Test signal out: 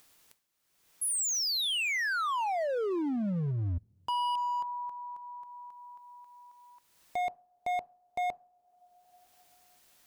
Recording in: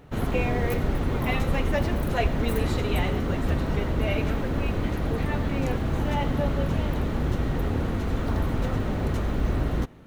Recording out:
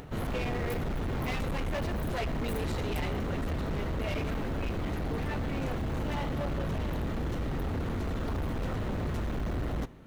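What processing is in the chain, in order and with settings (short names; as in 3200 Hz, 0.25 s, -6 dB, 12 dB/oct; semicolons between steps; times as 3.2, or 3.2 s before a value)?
two-slope reverb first 0.37 s, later 2 s, from -21 dB, DRR 19.5 dB; upward compressor, threshold -35 dBFS; overloaded stage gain 26 dB; gain -3 dB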